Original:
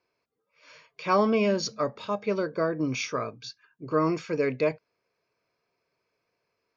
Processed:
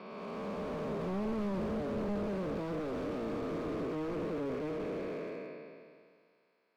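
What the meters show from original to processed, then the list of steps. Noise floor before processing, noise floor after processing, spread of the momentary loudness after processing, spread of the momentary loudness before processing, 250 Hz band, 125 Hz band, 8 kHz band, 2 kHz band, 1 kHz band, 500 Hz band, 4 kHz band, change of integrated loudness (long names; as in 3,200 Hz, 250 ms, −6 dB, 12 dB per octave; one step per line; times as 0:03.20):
−80 dBFS, −72 dBFS, 8 LU, 14 LU, −5.5 dB, −5.0 dB, can't be measured, −12.0 dB, −11.5 dB, −8.0 dB, −15.0 dB, −9.5 dB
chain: spectrum smeared in time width 1,340 ms
elliptic band-pass filter 180–4,100 Hz
in parallel at +2 dB: downward compressor, threshold −42 dBFS, peak gain reduction 12 dB
on the sum: slew-rate limiting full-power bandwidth 8.8 Hz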